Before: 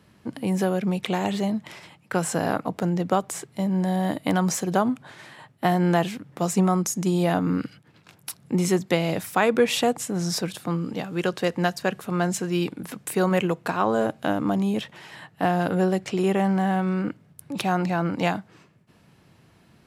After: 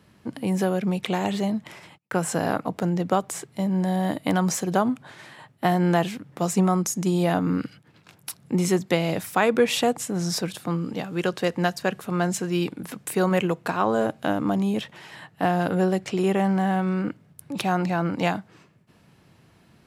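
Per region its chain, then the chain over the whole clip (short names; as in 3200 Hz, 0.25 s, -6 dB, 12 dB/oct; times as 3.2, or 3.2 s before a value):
1.64–2.28 gate -54 dBFS, range -28 dB + dynamic EQ 4200 Hz, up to -5 dB, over -50 dBFS, Q 1.1
whole clip: dry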